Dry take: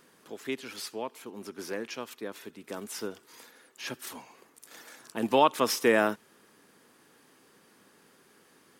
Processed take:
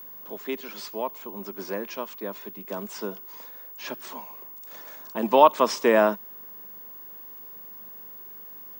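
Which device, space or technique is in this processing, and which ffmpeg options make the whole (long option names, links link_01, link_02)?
old television with a line whistle: -af "highpass=frequency=170:width=0.5412,highpass=frequency=170:width=1.3066,equalizer=frequency=190:width_type=q:width=4:gain=9,equalizer=frequency=380:width_type=q:width=4:gain=3,equalizer=frequency=610:width_type=q:width=4:gain=9,equalizer=frequency=1000:width_type=q:width=4:gain=10,lowpass=frequency=7600:width=0.5412,lowpass=frequency=7600:width=1.3066,aeval=exprs='val(0)+0.01*sin(2*PI*15625*n/s)':channel_layout=same"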